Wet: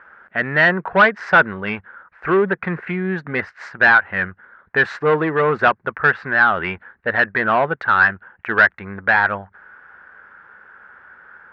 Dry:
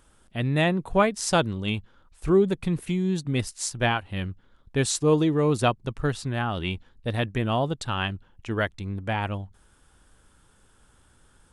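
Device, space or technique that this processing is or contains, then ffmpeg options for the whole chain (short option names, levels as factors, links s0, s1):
overdrive pedal into a guitar cabinet: -filter_complex "[0:a]highshelf=f=2500:t=q:w=3:g=-11,asplit=2[s0][s1];[s1]highpass=f=720:p=1,volume=10,asoftclip=type=tanh:threshold=0.531[s2];[s0][s2]amix=inputs=2:normalize=0,lowpass=f=4200:p=1,volume=0.501,highpass=83,equalizer=f=120:t=q:w=4:g=-10,equalizer=f=290:t=q:w=4:g=-9,equalizer=f=1500:t=q:w=4:g=7,lowpass=f=3800:w=0.5412,lowpass=f=3800:w=1.3066"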